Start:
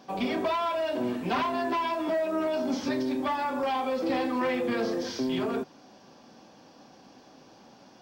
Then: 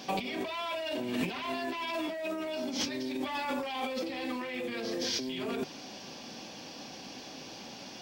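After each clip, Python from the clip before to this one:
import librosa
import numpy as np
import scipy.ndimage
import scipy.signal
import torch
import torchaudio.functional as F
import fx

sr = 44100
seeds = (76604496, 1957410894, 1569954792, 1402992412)

y = fx.high_shelf_res(x, sr, hz=1800.0, db=7.0, q=1.5)
y = fx.over_compress(y, sr, threshold_db=-35.0, ratio=-1.0)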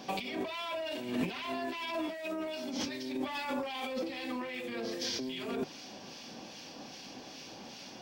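y = fx.harmonic_tremolo(x, sr, hz=2.5, depth_pct=50, crossover_hz=1500.0)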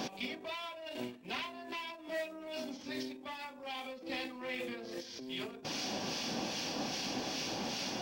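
y = fx.over_compress(x, sr, threshold_db=-43.0, ratio=-0.5)
y = y * librosa.db_to_amplitude(3.5)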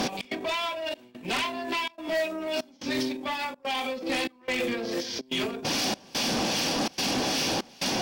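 y = fx.fold_sine(x, sr, drive_db=10, ceiling_db=-23.0)
y = fx.step_gate(y, sr, bpm=144, pattern='xx.xxxxxx..xxxxx', floor_db=-24.0, edge_ms=4.5)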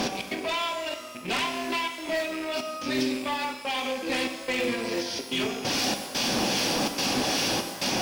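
y = fx.rattle_buzz(x, sr, strikes_db=-43.0, level_db=-29.0)
y = fx.rev_shimmer(y, sr, seeds[0], rt60_s=1.2, semitones=12, shimmer_db=-8, drr_db=6.0)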